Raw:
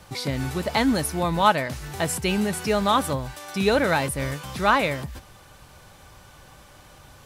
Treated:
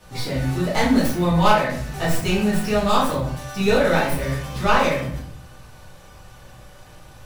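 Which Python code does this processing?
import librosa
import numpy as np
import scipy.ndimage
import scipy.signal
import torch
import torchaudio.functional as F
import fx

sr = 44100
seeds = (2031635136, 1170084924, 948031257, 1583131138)

y = fx.tracing_dist(x, sr, depth_ms=0.1)
y = fx.room_shoebox(y, sr, seeds[0], volume_m3=91.0, walls='mixed', distance_m=1.9)
y = y * 10.0 ** (-6.5 / 20.0)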